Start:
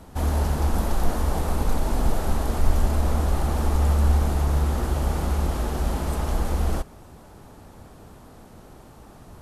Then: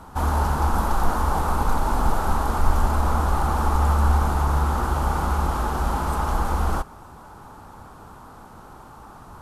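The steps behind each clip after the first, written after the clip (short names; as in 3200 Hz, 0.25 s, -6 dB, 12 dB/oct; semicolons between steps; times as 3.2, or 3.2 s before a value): band shelf 1100 Hz +10 dB 1.1 oct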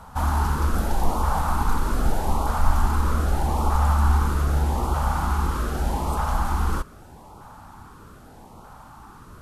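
LFO notch saw up 0.81 Hz 300–1800 Hz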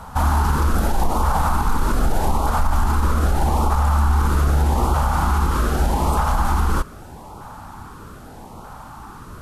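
limiter -16.5 dBFS, peak gain reduction 10 dB; gain +7 dB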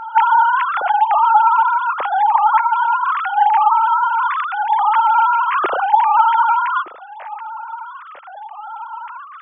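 sine-wave speech; gain +2 dB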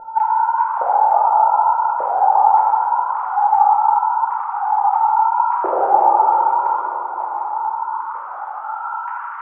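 shoebox room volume 160 m³, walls hard, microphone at 0.76 m; low-pass sweep 640 Hz -> 1800 Hz, 6.95–9.31; gain -6 dB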